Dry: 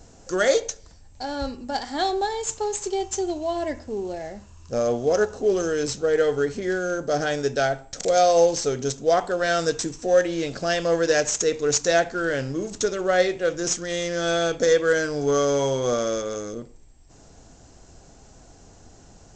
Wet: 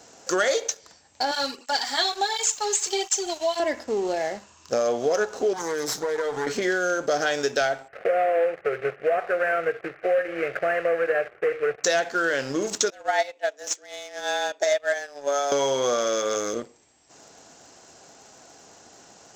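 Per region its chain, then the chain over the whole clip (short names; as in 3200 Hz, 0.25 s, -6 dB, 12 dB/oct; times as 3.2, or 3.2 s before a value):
1.31–3.6 tilt shelf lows -6 dB, about 1200 Hz + doubler 15 ms -11 dB + tape flanging out of phase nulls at 1.4 Hz, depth 4 ms
5.53–6.47 minimum comb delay 6.5 ms + bell 2700 Hz -11.5 dB 0.45 oct + compressor, threshold -30 dBFS
7.88–11.84 CVSD 16 kbps + fixed phaser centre 950 Hz, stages 6
12.9–15.52 HPF 140 Hz 6 dB/oct + frequency shift +140 Hz + upward expander 2.5:1, over -28 dBFS
whole clip: weighting filter A; sample leveller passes 1; compressor 4:1, threshold -28 dBFS; gain +6.5 dB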